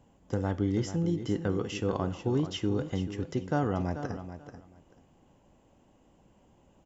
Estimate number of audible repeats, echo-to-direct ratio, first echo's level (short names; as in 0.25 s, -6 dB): 2, -11.0 dB, -11.0 dB